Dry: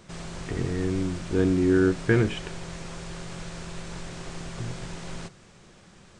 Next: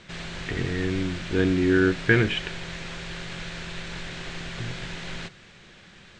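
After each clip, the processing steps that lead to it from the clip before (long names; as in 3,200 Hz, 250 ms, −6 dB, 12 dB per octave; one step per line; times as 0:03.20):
low-pass filter 7,600 Hz 24 dB per octave
flat-topped bell 2,500 Hz +8.5 dB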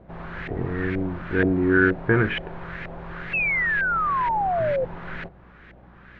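mains hum 60 Hz, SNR 25 dB
auto-filter low-pass saw up 2.1 Hz 630–2,000 Hz
sound drawn into the spectrogram fall, 0:03.33–0:04.85, 500–2,700 Hz −23 dBFS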